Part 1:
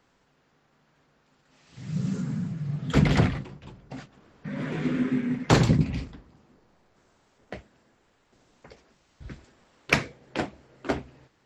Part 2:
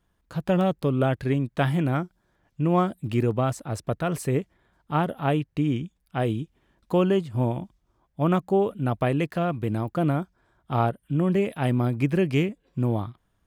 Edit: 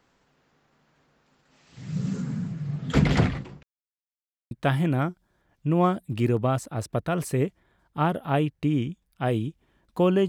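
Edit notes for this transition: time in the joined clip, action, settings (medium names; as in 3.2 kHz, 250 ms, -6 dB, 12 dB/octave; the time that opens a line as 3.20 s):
part 1
3.63–4.51 s: mute
4.51 s: go over to part 2 from 1.45 s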